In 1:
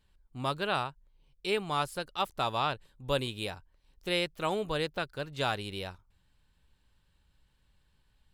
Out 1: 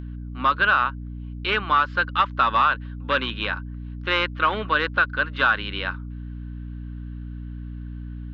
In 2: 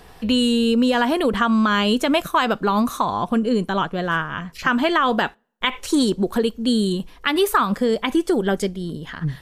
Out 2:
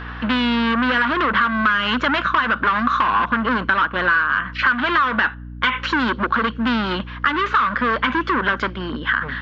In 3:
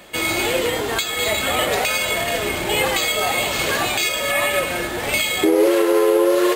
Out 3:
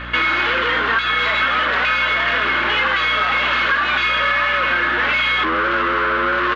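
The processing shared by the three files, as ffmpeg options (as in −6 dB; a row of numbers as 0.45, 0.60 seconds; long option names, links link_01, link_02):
-af "bandreject=frequency=1000:width=21,aresample=16000,volume=24.5dB,asoftclip=hard,volume=-24.5dB,aresample=44100,acontrast=79,highpass=frequency=230:width=0.5412,highpass=frequency=230:width=1.3066,equalizer=frequency=230:width_type=q:width=4:gain=5,equalizer=frequency=410:width_type=q:width=4:gain=-6,equalizer=frequency=730:width_type=q:width=4:gain=-8,equalizer=frequency=1100:width_type=q:width=4:gain=8,equalizer=frequency=1500:width_type=q:width=4:gain=10,equalizer=frequency=2400:width_type=q:width=4:gain=-4,lowpass=frequency=2800:width=0.5412,lowpass=frequency=2800:width=1.3066,aeval=exprs='val(0)+0.0282*(sin(2*PI*60*n/s)+sin(2*PI*2*60*n/s)/2+sin(2*PI*3*60*n/s)/3+sin(2*PI*4*60*n/s)/4+sin(2*PI*5*60*n/s)/5)':channel_layout=same,tiltshelf=frequency=1300:gain=-7,acompressor=threshold=-20dB:ratio=6,volume=5.5dB"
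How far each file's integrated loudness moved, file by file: +11.0, +1.5, +2.5 LU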